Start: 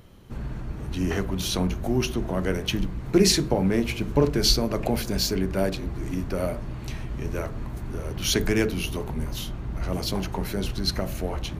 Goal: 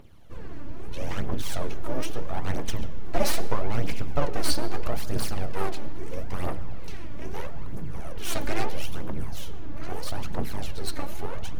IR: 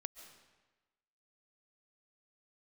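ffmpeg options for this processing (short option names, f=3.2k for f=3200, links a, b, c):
-filter_complex "[0:a]aeval=exprs='abs(val(0))':c=same,aphaser=in_gain=1:out_gain=1:delay=3.6:decay=0.56:speed=0.77:type=triangular,asplit=2[a][b];[1:a]atrim=start_sample=2205,asetrate=57330,aresample=44100,highshelf=f=7k:g=-11.5[c];[b][c]afir=irnorm=-1:irlink=0,volume=3dB[d];[a][d]amix=inputs=2:normalize=0,volume=-9dB"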